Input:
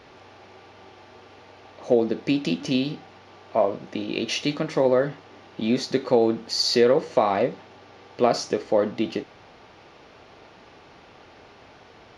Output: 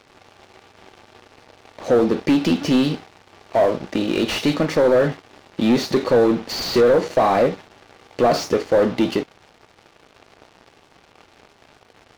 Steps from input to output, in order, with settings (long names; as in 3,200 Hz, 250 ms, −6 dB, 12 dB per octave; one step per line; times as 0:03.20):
leveller curve on the samples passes 3
slew-rate limiting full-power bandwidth 300 Hz
level −2.5 dB